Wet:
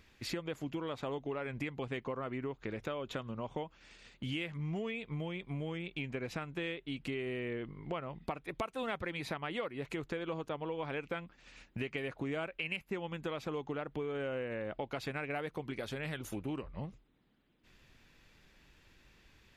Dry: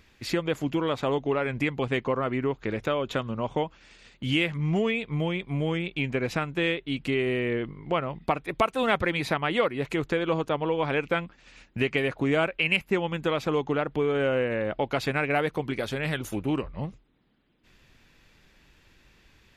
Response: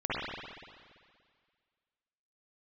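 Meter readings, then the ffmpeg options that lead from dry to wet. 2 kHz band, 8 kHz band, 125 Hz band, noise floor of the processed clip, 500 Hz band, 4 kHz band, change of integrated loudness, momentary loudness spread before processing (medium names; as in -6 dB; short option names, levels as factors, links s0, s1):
-12.5 dB, no reading, -11.0 dB, -66 dBFS, -12.5 dB, -12.0 dB, -12.0 dB, 5 LU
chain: -af "acompressor=threshold=0.02:ratio=2.5,volume=0.596"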